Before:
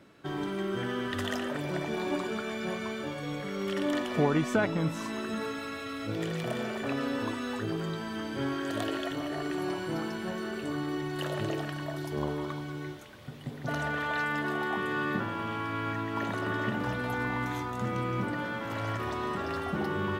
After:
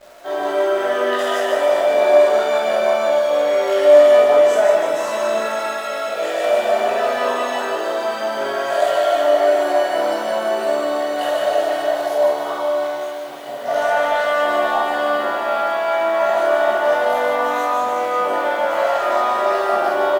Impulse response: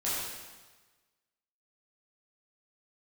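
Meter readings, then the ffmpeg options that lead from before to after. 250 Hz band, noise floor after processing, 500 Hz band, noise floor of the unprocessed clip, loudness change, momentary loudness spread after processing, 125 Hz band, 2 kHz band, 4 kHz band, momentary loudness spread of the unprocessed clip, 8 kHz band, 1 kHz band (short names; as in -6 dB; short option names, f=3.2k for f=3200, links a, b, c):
0.0 dB, -26 dBFS, +20.0 dB, -39 dBFS, +15.0 dB, 9 LU, under -15 dB, +10.5 dB, +11.5 dB, 6 LU, +13.0 dB, +16.5 dB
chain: -filter_complex "[0:a]acrossover=split=5800[a][b];[a]alimiter=limit=-22dB:level=0:latency=1:release=273[c];[c][b]amix=inputs=2:normalize=0,highpass=f=630:t=q:w=5.6,asplit=2[d][e];[e]asoftclip=type=tanh:threshold=-25dB,volume=-8dB[f];[d][f]amix=inputs=2:normalize=0,asplit=2[g][h];[h]adelay=49,volume=-11dB[i];[g][i]amix=inputs=2:normalize=0,aecho=1:1:150|322.5|520.9|749|1011:0.631|0.398|0.251|0.158|0.1[j];[1:a]atrim=start_sample=2205,afade=t=out:st=0.14:d=0.01,atrim=end_sample=6615[k];[j][k]afir=irnorm=-1:irlink=0,acrusher=bits=9:dc=4:mix=0:aa=0.000001,volume=2dB"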